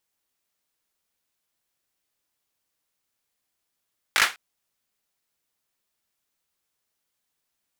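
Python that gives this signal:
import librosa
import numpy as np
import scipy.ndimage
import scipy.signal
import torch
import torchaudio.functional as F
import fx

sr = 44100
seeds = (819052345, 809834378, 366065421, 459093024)

y = fx.drum_clap(sr, seeds[0], length_s=0.2, bursts=4, spacing_ms=19, hz=1800.0, decay_s=0.24)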